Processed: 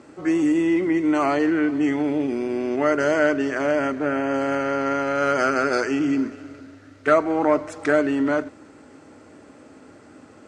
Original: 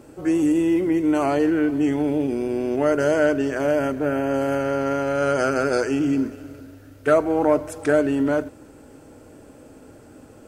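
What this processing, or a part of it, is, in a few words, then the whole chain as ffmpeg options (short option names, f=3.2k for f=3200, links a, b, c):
car door speaker: -af "highpass=110,equalizer=f=130:t=q:w=4:g=-6,equalizer=f=490:t=q:w=4:g=-4,equalizer=f=1.2k:t=q:w=4:g=6,equalizer=f=2k:t=q:w=4:g=7,equalizer=f=4.1k:t=q:w=4:g=3,lowpass=f=7.7k:w=0.5412,lowpass=f=7.7k:w=1.3066"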